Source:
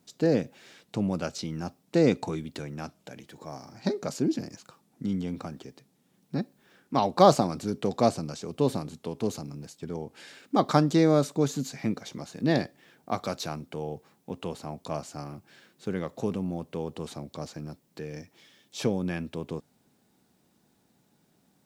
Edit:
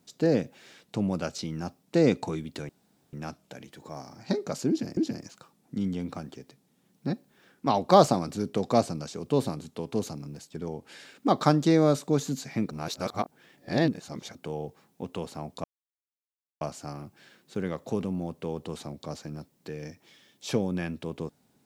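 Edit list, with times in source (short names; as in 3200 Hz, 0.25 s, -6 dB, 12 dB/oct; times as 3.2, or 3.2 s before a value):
2.69 insert room tone 0.44 s
4.25–4.53 loop, 2 plays
11.99–13.63 reverse
14.92 insert silence 0.97 s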